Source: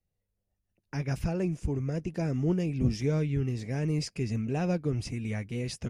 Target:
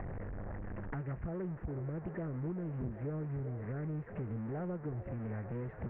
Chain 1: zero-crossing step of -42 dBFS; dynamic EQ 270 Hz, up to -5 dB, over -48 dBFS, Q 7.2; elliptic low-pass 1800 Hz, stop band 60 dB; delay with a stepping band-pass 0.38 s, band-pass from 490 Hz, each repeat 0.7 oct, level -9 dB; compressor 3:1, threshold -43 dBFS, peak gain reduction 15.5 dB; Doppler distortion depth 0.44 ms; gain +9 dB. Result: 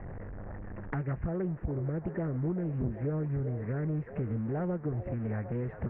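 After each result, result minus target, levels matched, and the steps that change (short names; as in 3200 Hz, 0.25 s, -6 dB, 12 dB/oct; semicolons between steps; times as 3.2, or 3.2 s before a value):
compressor: peak gain reduction -7.5 dB; zero-crossing step: distortion -8 dB
change: compressor 3:1, threshold -53.5 dBFS, peak gain reduction 22.5 dB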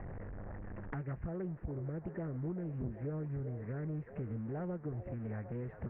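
zero-crossing step: distortion -8 dB
change: zero-crossing step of -33 dBFS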